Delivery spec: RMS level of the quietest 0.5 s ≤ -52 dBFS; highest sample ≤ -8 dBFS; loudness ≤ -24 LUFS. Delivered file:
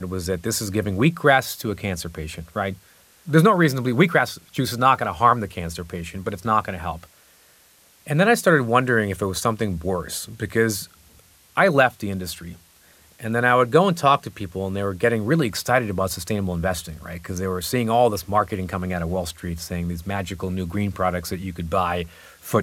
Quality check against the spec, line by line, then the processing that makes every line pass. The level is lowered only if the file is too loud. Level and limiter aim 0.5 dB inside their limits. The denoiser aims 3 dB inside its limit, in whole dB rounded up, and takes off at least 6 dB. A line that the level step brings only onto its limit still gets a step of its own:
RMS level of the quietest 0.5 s -55 dBFS: OK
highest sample -3.0 dBFS: fail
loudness -22.0 LUFS: fail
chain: gain -2.5 dB; limiter -8.5 dBFS

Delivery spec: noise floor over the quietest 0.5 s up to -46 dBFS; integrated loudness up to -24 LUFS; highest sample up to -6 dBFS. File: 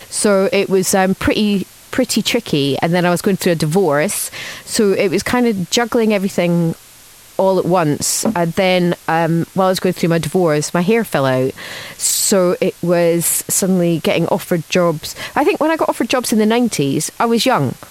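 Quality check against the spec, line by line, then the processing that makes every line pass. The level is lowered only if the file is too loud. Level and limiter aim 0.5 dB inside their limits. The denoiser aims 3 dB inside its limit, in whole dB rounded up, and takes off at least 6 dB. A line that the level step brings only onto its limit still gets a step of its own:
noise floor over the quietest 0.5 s -42 dBFS: fail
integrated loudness -15.5 LUFS: fail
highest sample -3.0 dBFS: fail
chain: gain -9 dB

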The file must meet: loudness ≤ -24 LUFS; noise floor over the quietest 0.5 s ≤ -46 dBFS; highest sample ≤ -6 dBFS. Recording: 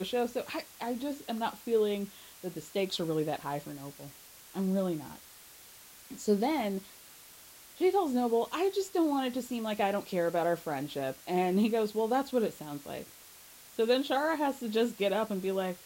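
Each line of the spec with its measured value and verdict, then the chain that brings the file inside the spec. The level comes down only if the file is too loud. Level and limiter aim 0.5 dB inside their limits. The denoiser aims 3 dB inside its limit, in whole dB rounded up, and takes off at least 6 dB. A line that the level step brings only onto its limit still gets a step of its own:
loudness -31.5 LUFS: OK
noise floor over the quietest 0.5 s -53 dBFS: OK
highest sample -16.0 dBFS: OK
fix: none

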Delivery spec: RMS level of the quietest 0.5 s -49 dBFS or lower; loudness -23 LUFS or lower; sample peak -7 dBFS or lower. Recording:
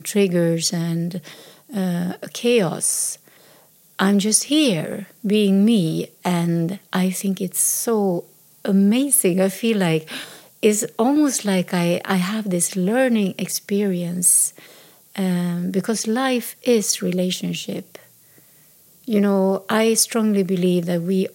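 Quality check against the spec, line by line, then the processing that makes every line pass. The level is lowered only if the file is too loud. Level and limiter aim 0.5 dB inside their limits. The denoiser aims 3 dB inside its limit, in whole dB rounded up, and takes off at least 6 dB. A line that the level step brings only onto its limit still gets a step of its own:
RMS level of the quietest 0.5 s -52 dBFS: OK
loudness -19.5 LUFS: fail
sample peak -3.5 dBFS: fail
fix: gain -4 dB

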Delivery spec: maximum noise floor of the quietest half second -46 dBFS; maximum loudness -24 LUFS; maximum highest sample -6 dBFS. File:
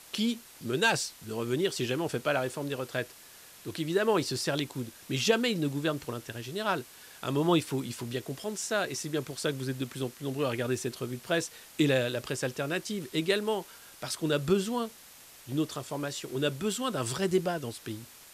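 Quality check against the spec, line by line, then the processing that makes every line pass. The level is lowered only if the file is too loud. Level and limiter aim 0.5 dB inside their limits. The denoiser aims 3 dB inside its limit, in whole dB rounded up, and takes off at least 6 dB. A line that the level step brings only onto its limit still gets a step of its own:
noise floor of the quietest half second -52 dBFS: OK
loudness -31.0 LUFS: OK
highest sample -12.0 dBFS: OK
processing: none

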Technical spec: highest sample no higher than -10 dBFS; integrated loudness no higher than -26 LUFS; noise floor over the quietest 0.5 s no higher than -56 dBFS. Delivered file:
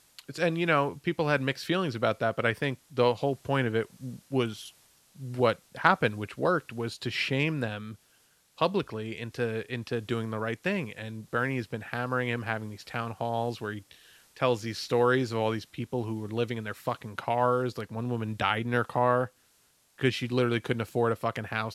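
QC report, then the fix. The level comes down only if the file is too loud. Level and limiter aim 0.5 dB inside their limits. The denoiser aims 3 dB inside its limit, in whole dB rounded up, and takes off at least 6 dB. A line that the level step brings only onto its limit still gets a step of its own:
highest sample -5.0 dBFS: fail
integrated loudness -29.5 LUFS: OK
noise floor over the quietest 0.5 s -66 dBFS: OK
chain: limiter -10.5 dBFS

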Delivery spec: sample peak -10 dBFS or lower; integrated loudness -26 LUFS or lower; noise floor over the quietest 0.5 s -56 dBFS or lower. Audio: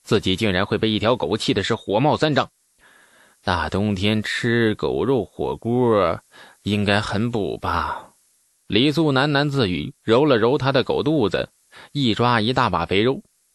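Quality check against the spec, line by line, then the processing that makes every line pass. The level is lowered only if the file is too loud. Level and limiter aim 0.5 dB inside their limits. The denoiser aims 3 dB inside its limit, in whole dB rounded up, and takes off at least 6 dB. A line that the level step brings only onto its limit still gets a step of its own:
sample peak -4.5 dBFS: fail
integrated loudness -20.5 LUFS: fail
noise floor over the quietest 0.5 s -63 dBFS: OK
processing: gain -6 dB

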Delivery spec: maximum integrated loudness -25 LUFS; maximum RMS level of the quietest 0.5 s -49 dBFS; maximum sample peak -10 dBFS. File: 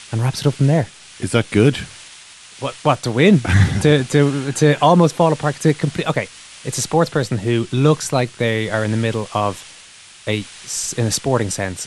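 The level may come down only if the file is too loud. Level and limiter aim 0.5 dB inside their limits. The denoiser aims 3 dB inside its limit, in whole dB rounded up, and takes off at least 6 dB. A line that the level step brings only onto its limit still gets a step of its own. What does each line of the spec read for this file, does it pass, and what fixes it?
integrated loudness -17.5 LUFS: fail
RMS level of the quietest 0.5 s -43 dBFS: fail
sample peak -1.5 dBFS: fail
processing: gain -8 dB; limiter -10.5 dBFS

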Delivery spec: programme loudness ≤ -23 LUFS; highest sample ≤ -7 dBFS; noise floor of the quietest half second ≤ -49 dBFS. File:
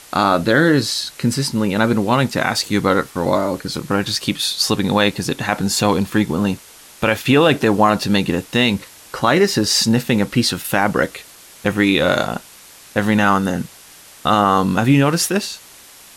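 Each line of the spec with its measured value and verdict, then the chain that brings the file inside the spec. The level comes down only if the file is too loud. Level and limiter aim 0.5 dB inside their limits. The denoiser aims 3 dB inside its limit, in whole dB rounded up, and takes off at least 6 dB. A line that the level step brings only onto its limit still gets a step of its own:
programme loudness -17.5 LUFS: fail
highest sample -2.5 dBFS: fail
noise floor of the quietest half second -43 dBFS: fail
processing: denoiser 6 dB, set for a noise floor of -43 dBFS; gain -6 dB

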